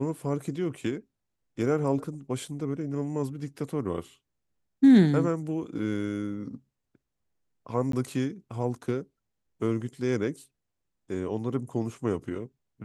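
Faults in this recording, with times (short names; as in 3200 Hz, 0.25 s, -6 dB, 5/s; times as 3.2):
7.92–7.93 gap 13 ms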